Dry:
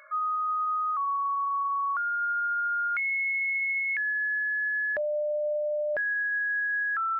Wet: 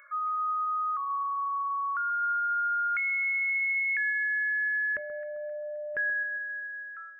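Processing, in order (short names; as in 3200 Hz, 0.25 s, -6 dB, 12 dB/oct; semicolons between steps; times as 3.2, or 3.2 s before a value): ending faded out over 1.04 s; fixed phaser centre 1800 Hz, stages 4; echo with dull and thin repeats by turns 0.132 s, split 1300 Hz, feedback 64%, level -10 dB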